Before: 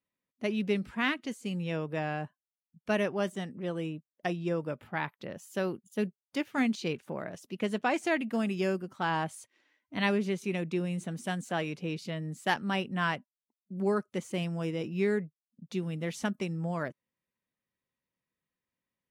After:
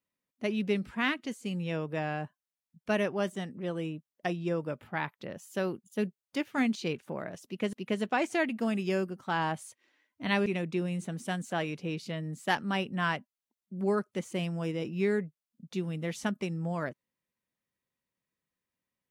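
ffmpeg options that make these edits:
-filter_complex "[0:a]asplit=3[s0][s1][s2];[s0]atrim=end=7.732[s3];[s1]atrim=start=7.448:end=10.182[s4];[s2]atrim=start=10.448[s5];[s3][s4]acrossfade=d=0.004:c1=hsin:c2=hsin[s6];[s6][s5]acrossfade=d=0.004:c1=hsin:c2=hsin"

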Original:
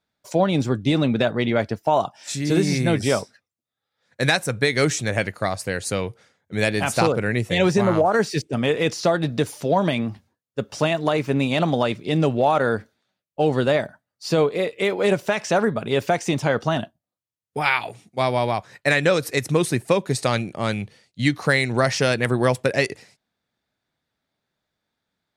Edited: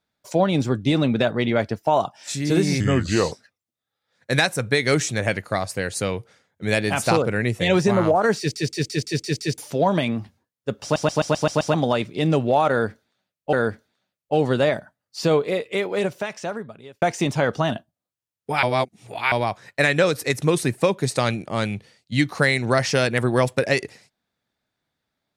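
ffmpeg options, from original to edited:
-filter_complex "[0:a]asplit=21[s0][s1][s2][s3][s4][s5][s6][s7][s8][s9][s10][s11][s12][s13][s14][s15][s16][s17][s18][s19][s20];[s0]atrim=end=2.804[s21];[s1]atrim=start=2.8:end=3.22,asetpts=PTS-STARTPTS,asetrate=35721,aresample=44100[s22];[s2]atrim=start=3.216:end=8.462[s23];[s3]atrim=start=8.288:end=8.462[s24];[s4]atrim=start=8.288:end=8.462[s25];[s5]atrim=start=8.288:end=8.462[s26];[s6]atrim=start=8.288:end=8.462[s27];[s7]atrim=start=8.288:end=8.462[s28];[s8]atrim=start=8.288:end=8.462[s29];[s9]atrim=start=9.478:end=10.862[s30];[s10]atrim=start=10.728:end=10.862[s31];[s11]atrim=start=10.728:end=10.862[s32];[s12]atrim=start=10.728:end=10.862[s33];[s13]atrim=start=10.728:end=10.862[s34];[s14]atrim=start=10.728:end=10.862[s35];[s15]atrim=start=10.728:end=10.862[s36];[s16]atrim=start=11.638:end=13.432[s37];[s17]atrim=start=12.598:end=16.09,asetpts=PTS-STARTPTS,afade=t=out:st=1.922:d=1.57[s38];[s18]atrim=start=16.09:end=17.702,asetpts=PTS-STARTPTS,afade=t=in:d=0.004:c=hsin[s39];[s19]atrim=start=17.698:end=18.392,asetpts=PTS-STARTPTS,areverse[s40];[s20]atrim=start=18.388[s41];[s21][s22]acrossfade=d=0.004:c1=hsin:c2=hsin[s42];[s42][s23]acrossfade=d=0.004:c1=hsin:c2=hsin[s43];[s43][s24]acrossfade=d=0.004:c1=hsin:c2=hsin[s44];[s44][s25]acrossfade=d=0.004:c1=hsin:c2=hsin[s45];[s45][s26]acrossfade=d=0.004:c1=hsin:c2=hsin[s46];[s46][s27]acrossfade=d=0.004:c1=hsin:c2=hsin[s47];[s47][s28]acrossfade=d=0.004:c1=hsin:c2=hsin[s48];[s48][s29]acrossfade=d=0.004:c1=hsin:c2=hsin[s49];[s49][s30]acrossfade=d=0.004:c1=hsin:c2=hsin[s50];[s50][s31]acrossfade=d=0.004:c1=hsin:c2=hsin[s51];[s51][s32]acrossfade=d=0.004:c1=hsin:c2=hsin[s52];[s52][s33]acrossfade=d=0.004:c1=hsin:c2=hsin[s53];[s53][s34]acrossfade=d=0.004:c1=hsin:c2=hsin[s54];[s54][s35]acrossfade=d=0.004:c1=hsin:c2=hsin[s55];[s55][s36]acrossfade=d=0.004:c1=hsin:c2=hsin[s56];[s56][s37]acrossfade=d=0.004:c1=hsin:c2=hsin[s57];[s38][s39]concat=n=2:v=0:a=1[s58];[s57][s58]acrossfade=d=0.004:c1=hsin:c2=hsin[s59];[s59][s40]acrossfade=d=0.004:c1=hsin:c2=hsin[s60];[s60][s41]acrossfade=d=0.004:c1=hsin:c2=hsin"

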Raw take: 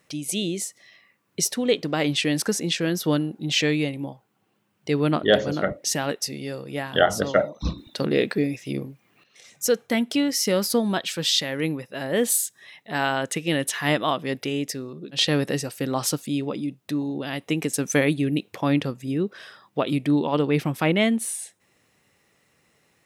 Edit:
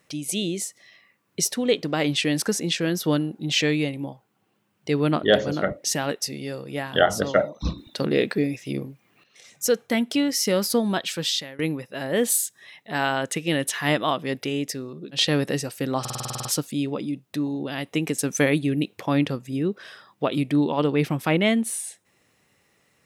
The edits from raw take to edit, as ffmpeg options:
-filter_complex "[0:a]asplit=11[s0][s1][s2][s3][s4][s5][s6][s7][s8][s9][s10];[s0]atrim=end=11.59,asetpts=PTS-STARTPTS,afade=t=out:st=11.17:d=0.42:silence=0.112202[s11];[s1]atrim=start=11.59:end=16.052,asetpts=PTS-STARTPTS,afade=t=in:d=0.004:c=hsin:silence=0.112202[s12];[s2]atrim=start=15.998:end=16.052[s13];[s3]atrim=start=15.998:end=16.052[s14];[s4]atrim=start=15.998:end=16.052[s15];[s5]atrim=start=15.998:end=16.052[s16];[s6]atrim=start=15.998:end=16.052[s17];[s7]atrim=start=15.998:end=16.052[s18];[s8]atrim=start=15.998:end=16.052[s19];[s9]atrim=start=15.998:end=16.052[s20];[s10]atrim=start=15.998[s21];[s11][s12]concat=n=2:v=0:a=1[s22];[s22][s13]acrossfade=d=0.004:c1=hsin:c2=hsin[s23];[s23][s14]acrossfade=d=0.004:c1=hsin:c2=hsin[s24];[s24][s15]acrossfade=d=0.004:c1=hsin:c2=hsin[s25];[s25][s16]acrossfade=d=0.004:c1=hsin:c2=hsin[s26];[s26][s17]acrossfade=d=0.004:c1=hsin:c2=hsin[s27];[s27][s18]acrossfade=d=0.004:c1=hsin:c2=hsin[s28];[s28][s19]acrossfade=d=0.004:c1=hsin:c2=hsin[s29];[s29][s20]acrossfade=d=0.004:c1=hsin:c2=hsin[s30];[s30][s21]acrossfade=d=0.004:c1=hsin:c2=hsin"

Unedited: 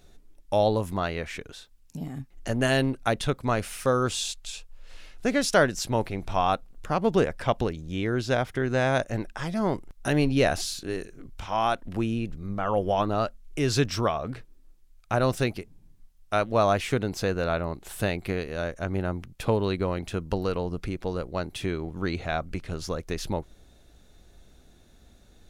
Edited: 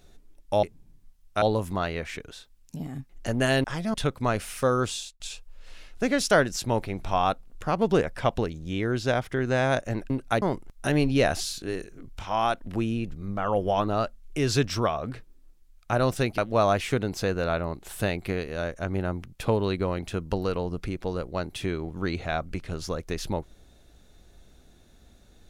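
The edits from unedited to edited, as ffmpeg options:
-filter_complex "[0:a]asplit=9[s0][s1][s2][s3][s4][s5][s6][s7][s8];[s0]atrim=end=0.632[s9];[s1]atrim=start=15.588:end=16.382[s10];[s2]atrim=start=0.628:end=2.852[s11];[s3]atrim=start=9.328:end=9.632[s12];[s4]atrim=start=3.168:end=4.43,asetpts=PTS-STARTPTS,afade=t=out:st=0.902:d=0.36[s13];[s5]atrim=start=4.43:end=9.332,asetpts=PTS-STARTPTS,afade=t=in:d=0.004:c=hsin[s14];[s6]atrim=start=2.848:end=3.172[s15];[s7]atrim=start=9.628:end=15.592[s16];[s8]atrim=start=16.378[s17];[s9][s10]acrossfade=d=0.004:c1=hsin:c2=hsin[s18];[s18][s11]acrossfade=d=0.004:c1=hsin:c2=hsin[s19];[s19][s12]acrossfade=d=0.004:c1=hsin:c2=hsin[s20];[s13][s14]concat=n=2:v=0:a=1[s21];[s20][s21]acrossfade=d=0.004:c1=hsin:c2=hsin[s22];[s22][s15]acrossfade=d=0.004:c1=hsin:c2=hsin[s23];[s23][s16]acrossfade=d=0.004:c1=hsin:c2=hsin[s24];[s24][s17]acrossfade=d=0.004:c1=hsin:c2=hsin"

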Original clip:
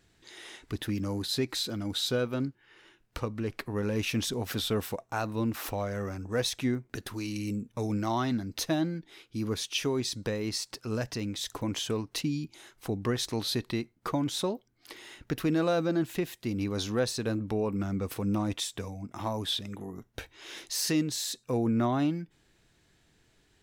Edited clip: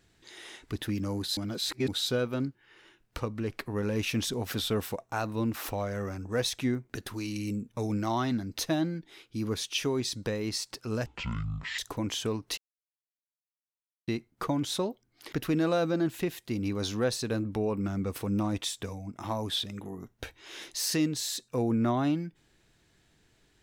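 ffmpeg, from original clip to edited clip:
-filter_complex "[0:a]asplit=8[s0][s1][s2][s3][s4][s5][s6][s7];[s0]atrim=end=1.372[s8];[s1]atrim=start=1.368:end=1.882,asetpts=PTS-STARTPTS,areverse[s9];[s2]atrim=start=1.878:end=11.064[s10];[s3]atrim=start=11.06:end=11.43,asetpts=PTS-STARTPTS,asetrate=22491,aresample=44100,atrim=end_sample=31994,asetpts=PTS-STARTPTS[s11];[s4]atrim=start=11.426:end=12.22,asetpts=PTS-STARTPTS,afade=t=out:st=0.79:d=0.004:c=hsin[s12];[s5]atrim=start=12.22:end=13.72,asetpts=PTS-STARTPTS,volume=0[s13];[s6]atrim=start=13.72:end=14.972,asetpts=PTS-STARTPTS,afade=t=in:d=0.004:c=hsin[s14];[s7]atrim=start=15.278[s15];[s8][s9]acrossfade=d=0.004:c1=hsin:c2=hsin[s16];[s16][s10]acrossfade=d=0.004:c1=hsin:c2=hsin[s17];[s17][s11]acrossfade=d=0.004:c1=hsin:c2=hsin[s18];[s12][s13][s14]concat=n=3:v=0:a=1[s19];[s18][s19]acrossfade=d=0.004:c1=hsin:c2=hsin[s20];[s20][s15]acrossfade=d=0.004:c1=hsin:c2=hsin"

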